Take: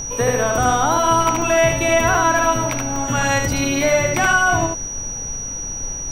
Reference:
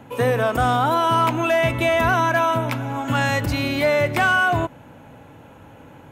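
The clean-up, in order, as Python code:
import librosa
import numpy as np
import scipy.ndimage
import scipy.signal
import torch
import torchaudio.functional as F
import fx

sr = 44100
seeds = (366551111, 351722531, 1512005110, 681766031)

y = fx.notch(x, sr, hz=5800.0, q=30.0)
y = fx.fix_interpolate(y, sr, at_s=(1.42, 1.72, 2.15, 2.96), length_ms=1.1)
y = fx.noise_reduce(y, sr, print_start_s=5.32, print_end_s=5.82, reduce_db=17.0)
y = fx.fix_echo_inverse(y, sr, delay_ms=76, level_db=-3.0)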